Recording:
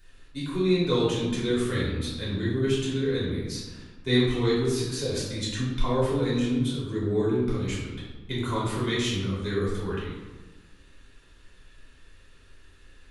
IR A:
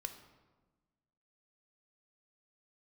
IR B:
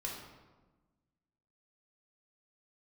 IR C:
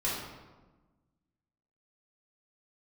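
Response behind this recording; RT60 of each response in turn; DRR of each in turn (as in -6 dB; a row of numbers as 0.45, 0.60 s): C; 1.3, 1.2, 1.2 s; 6.5, -3.0, -8.5 dB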